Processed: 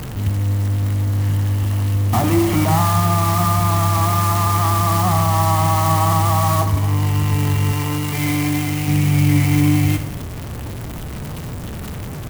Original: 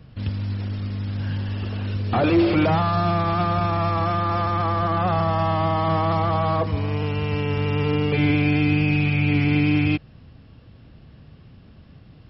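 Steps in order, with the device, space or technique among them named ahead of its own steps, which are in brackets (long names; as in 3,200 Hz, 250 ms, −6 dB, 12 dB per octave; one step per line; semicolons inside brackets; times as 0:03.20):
comb filter 1 ms, depth 79%
early CD player with a faulty converter (converter with a step at zero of −23 dBFS; converter with an unsteady clock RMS 0.057 ms)
0:07.72–0:08.88: low-shelf EQ 290 Hz −8.5 dB
four-comb reverb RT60 0.94 s, combs from 30 ms, DRR 9 dB
level −1 dB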